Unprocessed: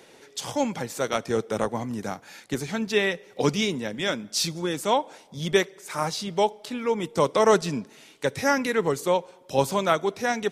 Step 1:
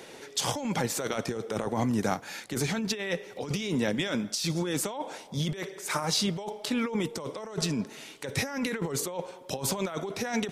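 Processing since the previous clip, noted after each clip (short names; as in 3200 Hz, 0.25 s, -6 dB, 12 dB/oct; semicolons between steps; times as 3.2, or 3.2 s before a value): negative-ratio compressor -31 dBFS, ratio -1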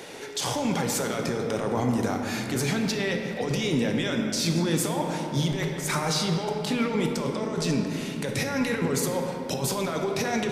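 limiter -23.5 dBFS, peak gain reduction 10 dB; shoebox room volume 160 m³, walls hard, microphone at 0.32 m; gain +5 dB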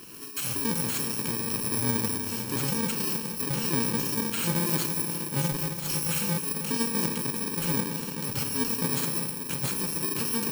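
FFT order left unsorted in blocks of 64 samples; mismatched tape noise reduction decoder only; gain -2 dB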